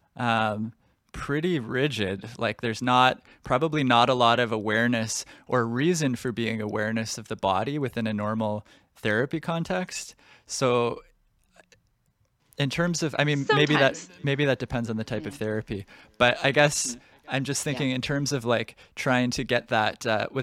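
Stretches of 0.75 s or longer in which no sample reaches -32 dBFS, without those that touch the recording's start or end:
10.98–12.53 s

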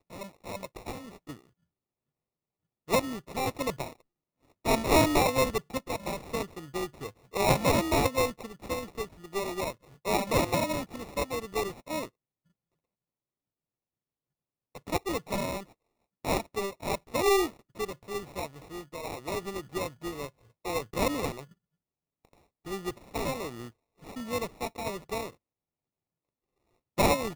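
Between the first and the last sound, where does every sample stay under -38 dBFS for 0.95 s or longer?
1.34–2.89 s
12.05–14.75 s
21.41–22.67 s
25.29–26.98 s

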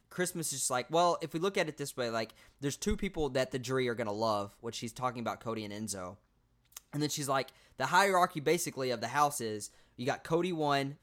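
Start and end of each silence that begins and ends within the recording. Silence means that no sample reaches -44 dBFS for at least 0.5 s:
6.13–6.77 s

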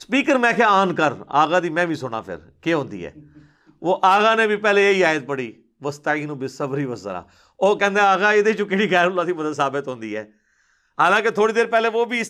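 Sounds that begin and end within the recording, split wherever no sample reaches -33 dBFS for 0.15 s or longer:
2.64–3.18 s
3.82–5.51 s
5.83–7.21 s
7.61–10.24 s

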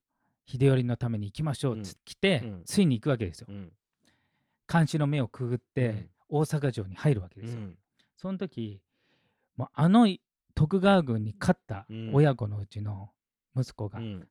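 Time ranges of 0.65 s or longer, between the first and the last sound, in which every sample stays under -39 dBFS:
3.65–4.69 s
8.74–9.58 s

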